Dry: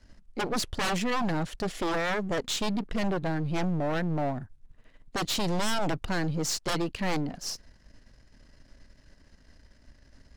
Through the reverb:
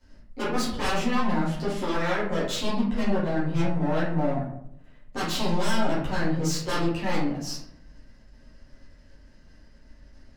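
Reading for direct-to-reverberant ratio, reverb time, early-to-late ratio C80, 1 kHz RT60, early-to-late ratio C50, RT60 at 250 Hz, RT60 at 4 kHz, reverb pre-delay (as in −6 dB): −10.0 dB, 0.75 s, 7.5 dB, 0.65 s, 3.0 dB, 0.95 s, 0.40 s, 6 ms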